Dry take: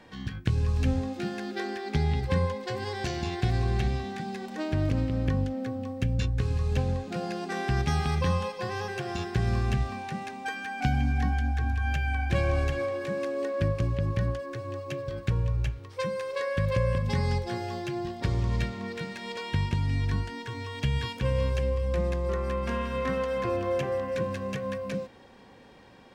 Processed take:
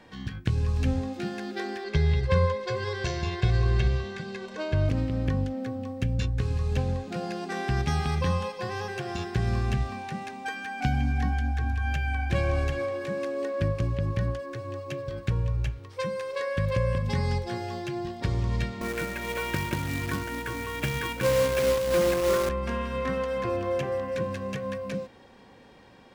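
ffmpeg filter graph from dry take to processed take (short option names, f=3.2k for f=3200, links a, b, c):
-filter_complex "[0:a]asettb=1/sr,asplit=3[a][b][c];[a]atrim=end=1.844[d];[b]atrim=start=1.84:end=4.89,asetpts=PTS-STARTPTS,afade=t=in:d=0.004:c=qsin,afade=t=out:st=3.046:d=0.004:c=qsin,lowpass=6.5k,aecho=1:1:1.9:0.77,atrim=end_sample=134505[e];[c]atrim=start=4.886[f];[d][e]acrossfade=d=0.004:c1=hsin:c2=qsin[g];[g][f]acrossfade=d=0.004:c1=qsin:c2=hsin,asettb=1/sr,asplit=3[h][i][j];[h]atrim=end=18.814[k];[i]atrim=start=18.81:end=22.49,asetpts=PTS-STARTPTS,afade=t=in:d=0.004:c=qsin,afade=t=out:st=3.676:d=0.004:c=qsin,highpass=140,equalizer=f=330:t=q:w=4:g=10,equalizer=f=570:t=q:w=4:g=10,equalizer=f=1.1k:t=q:w=4:g=5,equalizer=f=1.5k:t=q:w=4:g=9,equalizer=f=2.3k:t=q:w=4:g=7,lowpass=f=3.4k:w=0.5412,lowpass=f=3.4k:w=1.3066,acrusher=bits=2:mode=log:mix=0:aa=0.000001,aeval=exprs='val(0)+0.01*(sin(2*PI*60*n/s)+sin(2*PI*2*60*n/s)/2+sin(2*PI*3*60*n/s)/3+sin(2*PI*4*60*n/s)/4+sin(2*PI*5*60*n/s)/5)':c=same[l];[j]atrim=start=22.486[m];[k][l]acrossfade=d=0.004:c1=hsin:c2=qsin[n];[n][m]acrossfade=d=0.004:c1=qsin:c2=hsin"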